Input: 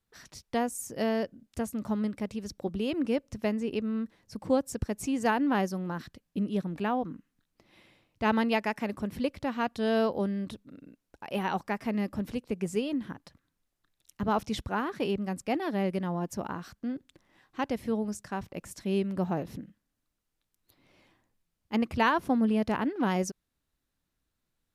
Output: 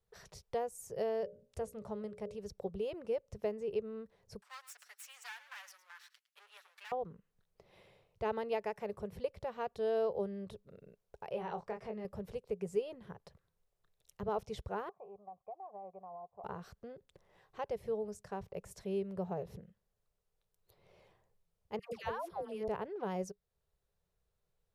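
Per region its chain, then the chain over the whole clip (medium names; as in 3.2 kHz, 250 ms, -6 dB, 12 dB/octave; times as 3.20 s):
1.21–2.39 s: brick-wall FIR low-pass 12 kHz + hum notches 60/120/180/240/300/360/420/480/540/600 Hz
4.41–6.92 s: comb filter that takes the minimum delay 6.9 ms + high-pass 1.5 kHz 24 dB/octave + delay 108 ms -16.5 dB
11.30–12.05 s: compression 2:1, threshold -32 dBFS + distance through air 51 m + doubling 23 ms -5 dB
14.89–16.44 s: cascade formant filter a + compression 4:1, threshold -44 dBFS
21.79–22.68 s: tilt EQ +1.5 dB/octave + compression 4:1, threshold -26 dBFS + phase dispersion lows, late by 137 ms, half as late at 760 Hz
whole clip: bass shelf 170 Hz +7 dB; compression 1.5:1, threshold -46 dBFS; FFT filter 190 Hz 0 dB, 280 Hz -19 dB, 410 Hz +11 dB, 1.6 kHz -1 dB; trim -5.5 dB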